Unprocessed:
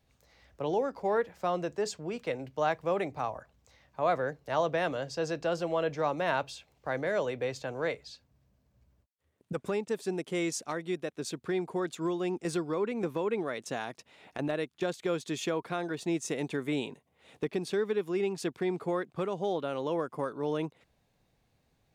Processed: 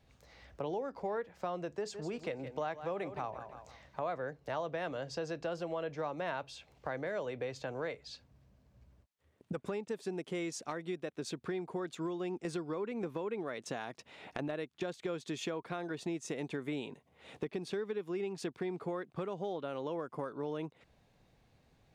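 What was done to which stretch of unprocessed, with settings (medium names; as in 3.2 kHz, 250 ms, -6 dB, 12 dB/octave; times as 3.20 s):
1.77–4.05 s: feedback delay 164 ms, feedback 34%, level -14 dB
whole clip: treble shelf 8.3 kHz -10.5 dB; compression 3:1, threshold -43 dBFS; trim +4.5 dB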